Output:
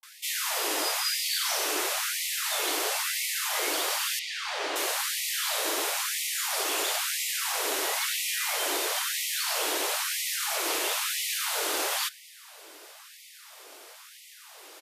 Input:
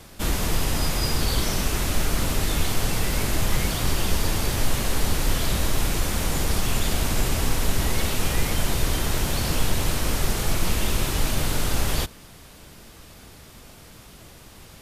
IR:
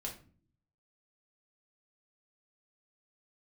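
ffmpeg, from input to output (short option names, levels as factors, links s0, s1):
-filter_complex "[0:a]asettb=1/sr,asplit=3[s0][s1][s2];[s0]atrim=end=4.164[s3];[s1]atrim=start=4.16:end=4.73,asetpts=PTS-STARTPTS,afade=t=in:d=0.004:c=qsin,afade=t=out:st=0.566:d=0.004:c=qsin,highpass=140,lowpass=4100[s4];[s2]atrim=start=4.726[s5];[s3][s4]acrossfade=d=0.004:c1=hsin:c2=qsin[s6];[s6][s5]acrossfade=d=0.004:c1=qsin:c2=hsin,acrossover=split=230[s7][s8];[s8]adelay=30[s9];[s7][s9]amix=inputs=2:normalize=0,asplit=2[s10][s11];[1:a]atrim=start_sample=2205[s12];[s11][s12]afir=irnorm=-1:irlink=0,volume=0.188[s13];[s10][s13]amix=inputs=2:normalize=0,afftfilt=real='re*gte(b*sr/1024,260*pow(1900/260,0.5+0.5*sin(2*PI*1*pts/sr)))':imag='im*gte(b*sr/1024,260*pow(1900/260,0.5+0.5*sin(2*PI*1*pts/sr)))':win_size=1024:overlap=0.75"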